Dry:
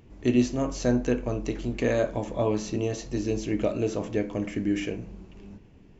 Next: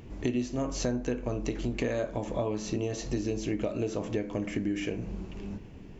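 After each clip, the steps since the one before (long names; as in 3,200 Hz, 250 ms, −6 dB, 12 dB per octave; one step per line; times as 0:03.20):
downward compressor 5 to 1, threshold −35 dBFS, peak gain reduction 16.5 dB
level +6.5 dB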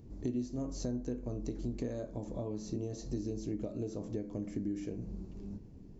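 drawn EQ curve 270 Hz 0 dB, 2,900 Hz −18 dB, 4,300 Hz −5 dB
level −5 dB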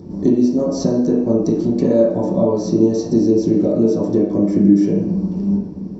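convolution reverb RT60 0.70 s, pre-delay 3 ms, DRR −8.5 dB
level +6.5 dB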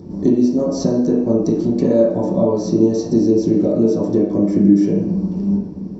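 no processing that can be heard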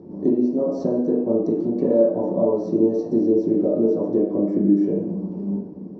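resonant band-pass 490 Hz, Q 0.84
level −2 dB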